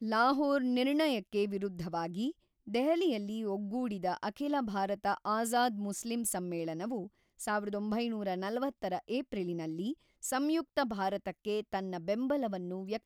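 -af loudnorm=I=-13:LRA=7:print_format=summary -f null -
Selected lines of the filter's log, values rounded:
Input Integrated:    -34.3 LUFS
Input True Peak:     -16.8 dBTP
Input LRA:             2.2 LU
Input Threshold:     -44.3 LUFS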